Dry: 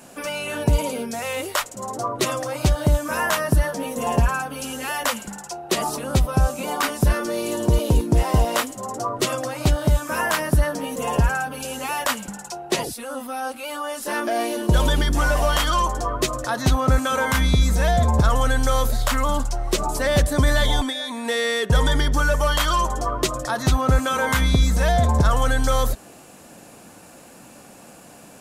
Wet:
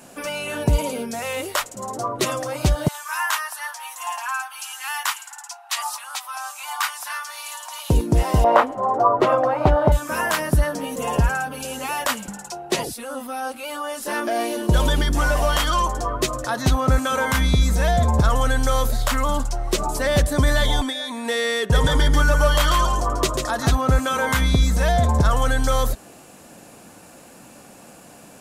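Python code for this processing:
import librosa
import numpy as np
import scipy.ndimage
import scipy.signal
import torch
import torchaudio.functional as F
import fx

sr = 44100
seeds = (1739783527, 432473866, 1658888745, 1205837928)

y = fx.steep_highpass(x, sr, hz=830.0, slope=48, at=(2.88, 7.9))
y = fx.curve_eq(y, sr, hz=(210.0, 860.0, 7700.0), db=(0, 13, -20), at=(8.44, 9.92))
y = fx.echo_single(y, sr, ms=142, db=-5.0, at=(21.6, 23.75))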